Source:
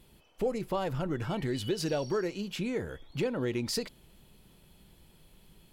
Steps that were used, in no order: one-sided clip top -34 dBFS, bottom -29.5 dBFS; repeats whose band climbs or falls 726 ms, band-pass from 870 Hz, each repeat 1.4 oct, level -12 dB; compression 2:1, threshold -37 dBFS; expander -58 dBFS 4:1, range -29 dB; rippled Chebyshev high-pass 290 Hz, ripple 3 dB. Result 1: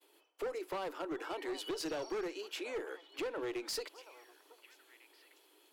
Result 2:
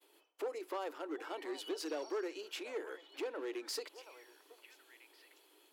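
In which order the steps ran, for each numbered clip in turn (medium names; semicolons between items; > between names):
expander > rippled Chebyshev high-pass > one-sided clip > repeats whose band climbs or falls > compression; repeats whose band climbs or falls > compression > one-sided clip > expander > rippled Chebyshev high-pass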